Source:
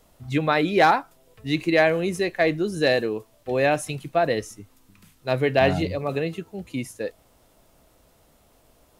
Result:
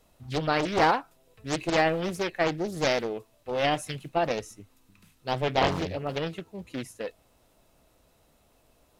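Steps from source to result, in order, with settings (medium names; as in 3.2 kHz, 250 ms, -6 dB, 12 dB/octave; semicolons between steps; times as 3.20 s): small resonant body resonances 2.6/3.9 kHz, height 9 dB; loudspeaker Doppler distortion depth 0.98 ms; trim -5 dB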